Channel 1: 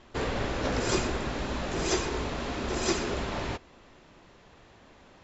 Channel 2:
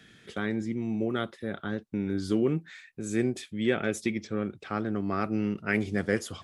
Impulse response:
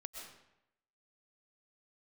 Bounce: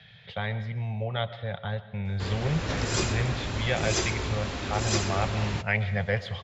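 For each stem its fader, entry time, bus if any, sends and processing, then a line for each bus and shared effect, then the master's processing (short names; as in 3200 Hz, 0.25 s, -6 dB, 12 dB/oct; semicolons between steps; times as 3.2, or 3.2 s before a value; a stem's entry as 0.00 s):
-6.0 dB, 2.05 s, no send, tilt shelf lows -4 dB, about 1200 Hz; AGC gain up to 5 dB
-4.5 dB, 0.00 s, send -4.5 dB, EQ curve 170 Hz 0 dB, 300 Hz -27 dB, 530 Hz +5 dB, 860 Hz +10 dB, 1300 Hz -2 dB, 2000 Hz +6 dB, 4000 Hz +8 dB, 8700 Hz -27 dB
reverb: on, RT60 0.85 s, pre-delay 85 ms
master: bell 100 Hz +12 dB 1.5 oct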